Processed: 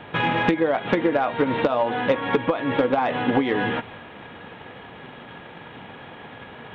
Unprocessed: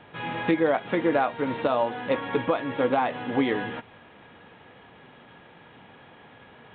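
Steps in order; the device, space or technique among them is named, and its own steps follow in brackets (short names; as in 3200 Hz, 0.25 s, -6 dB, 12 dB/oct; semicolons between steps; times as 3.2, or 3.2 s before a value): drum-bus smash (transient shaper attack +7 dB, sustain +2 dB; compressor 16:1, threshold -24 dBFS, peak gain reduction 12.5 dB; soft clip -17.5 dBFS, distortion -20 dB); gain +9 dB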